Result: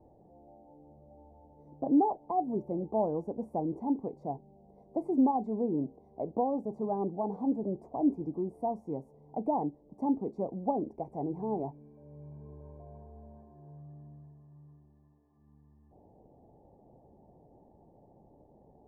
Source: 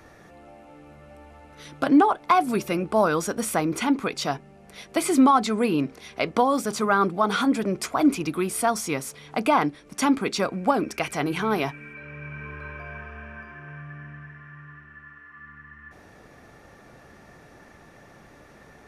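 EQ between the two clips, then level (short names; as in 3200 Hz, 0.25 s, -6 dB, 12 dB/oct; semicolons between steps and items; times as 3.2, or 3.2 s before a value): elliptic low-pass 860 Hz, stop band 40 dB; -7.5 dB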